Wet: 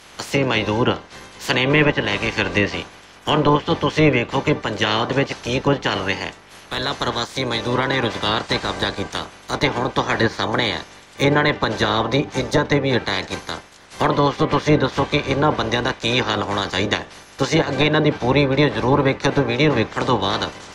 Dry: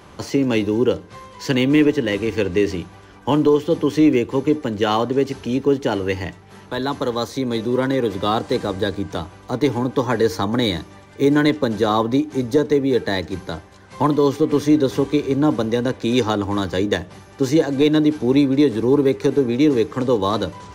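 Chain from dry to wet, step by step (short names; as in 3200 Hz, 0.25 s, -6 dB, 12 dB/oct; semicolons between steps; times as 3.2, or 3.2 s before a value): spectral limiter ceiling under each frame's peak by 21 dB; treble ducked by the level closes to 2700 Hz, closed at -12.5 dBFS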